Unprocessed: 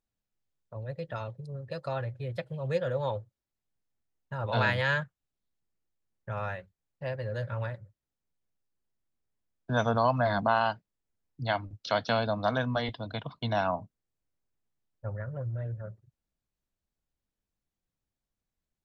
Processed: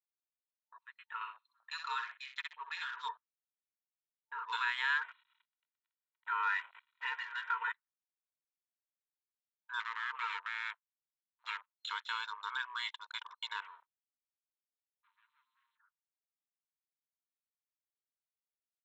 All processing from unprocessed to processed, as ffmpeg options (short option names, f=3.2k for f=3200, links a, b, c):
-filter_complex "[0:a]asettb=1/sr,asplit=3[a][b][c];[a]atrim=end=1.214[d];[b]atrim=start=1.21:end=3.08,asetpts=PTS-STARTPTS,afade=t=in:d=0.004:c=qsin,afade=t=out:st=1.866:d=0.004:c=qsin,highshelf=f=3.8k:g=8,acontrast=22,aecho=1:1:63|126|189:0.398|0.0995|0.0249,atrim=end_sample=82467[e];[c]atrim=start=3.076[f];[d][e]acrossfade=d=0.004:c1=hsin:c2=qsin[g];[g][f]acrossfade=d=0.004:c1=qsin:c2=hsin,asettb=1/sr,asplit=3[h][i][j];[h]atrim=end=5.014[k];[i]atrim=start=5.01:end=7.72,asetpts=PTS-STARTPTS,afade=t=in:d=0.004:c=qsin,afade=t=out:st=2.706:d=0.004:c=qsin,aeval=exprs='val(0)+0.5*0.00473*sgn(val(0))':c=same,equalizer=f=1.6k:w=0.42:g=8.5,aecho=1:1:2.1:0.86,atrim=end_sample=119511[l];[j]atrim=start=7.716[m];[k][l]acrossfade=d=0.004:c1=hsin:c2=qsin[n];[n][m]acrossfade=d=0.004:c1=qsin:c2=hsin,asettb=1/sr,asplit=3[o][p][q];[o]atrim=end=9.804[r];[p]atrim=start=9.8:end=11.66,asetpts=PTS-STARTPTS,afade=t=in:d=0.004:c=qsin,afade=t=out:st=1.856:d=0.004:c=qsin,highshelf=f=4k:g=-4,aeval=exprs='abs(val(0))':c=same[s];[q]atrim=start=11.656[t];[r][s]acrossfade=d=0.004:c1=hsin:c2=qsin[u];[u][t]acrossfade=d=0.004:c1=qsin:c2=hsin,asettb=1/sr,asplit=3[v][w][x];[v]atrim=end=13.604[y];[w]atrim=start=13.6:end=15.78,asetpts=PTS-STARTPTS,afade=t=in:d=0.004:c=qsin,afade=t=out:st=2.176:d=0.004:c=qsin,highpass=f=70:w=0.5412,highpass=f=70:w=1.3066,aeval=exprs='(tanh(200*val(0)+0.45)-tanh(0.45))/200':c=same,acrusher=bits=8:mix=0:aa=0.5[z];[x]atrim=start=15.776[aa];[y][z]acrossfade=d=0.004:c1=hsin:c2=qsin[ab];[ab][aa]acrossfade=d=0.004:c1=qsin:c2=hsin,alimiter=limit=-21.5dB:level=0:latency=1:release=50,afftfilt=real='re*between(b*sr/4096,900,4200)':imag='im*between(b*sr/4096,900,4200)':win_size=4096:overlap=0.75,afwtdn=0.00282"